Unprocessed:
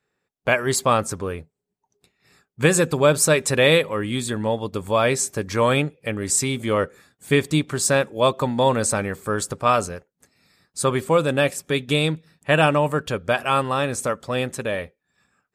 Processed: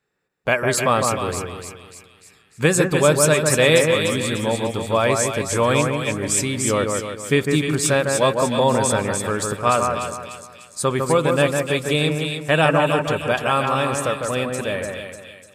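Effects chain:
echo with a time of its own for lows and highs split 2,200 Hz, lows 154 ms, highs 297 ms, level −4 dB
0:03.53–0:04.06: bit-depth reduction 12 bits, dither none

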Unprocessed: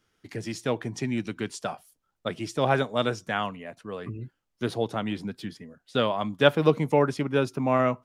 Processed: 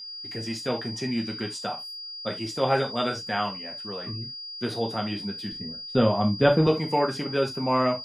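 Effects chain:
0:05.52–0:06.67: spectral tilt −3.5 dB per octave
steady tone 4,800 Hz −36 dBFS
reverb whose tail is shaped and stops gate 100 ms falling, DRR 1 dB
level −2.5 dB

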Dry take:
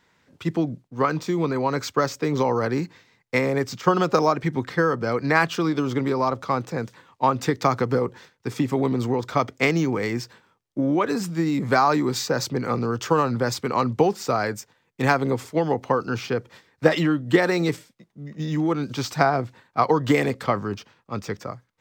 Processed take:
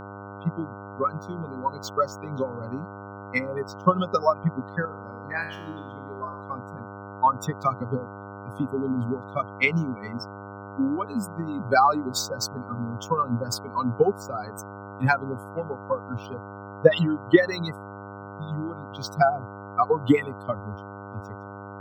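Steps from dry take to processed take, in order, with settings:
spectral dynamics exaggerated over time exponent 3
0:04.85–0:06.42: tuned comb filter 79 Hz, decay 0.74 s, harmonics all, mix 80%
hum with harmonics 100 Hz, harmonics 15, −45 dBFS −2 dB per octave
level +5.5 dB

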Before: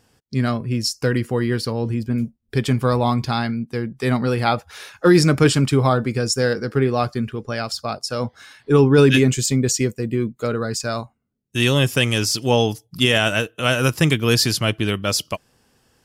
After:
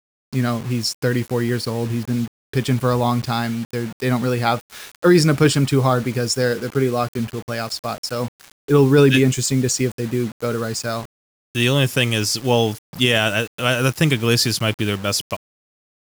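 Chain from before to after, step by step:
0:06.52–0:07.19: notch comb filter 900 Hz
bit-depth reduction 6 bits, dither none

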